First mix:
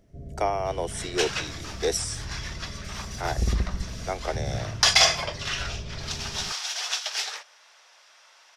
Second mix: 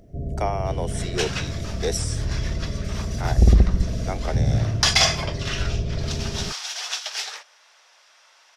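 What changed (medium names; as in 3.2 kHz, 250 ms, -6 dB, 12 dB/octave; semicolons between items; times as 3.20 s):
first sound +12.0 dB; reverb: off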